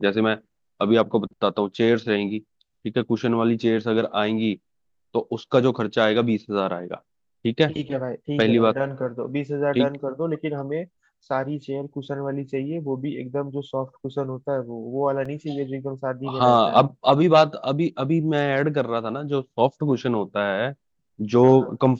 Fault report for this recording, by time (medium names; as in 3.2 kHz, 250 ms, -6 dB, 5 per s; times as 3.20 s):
15.25 s: dropout 4.6 ms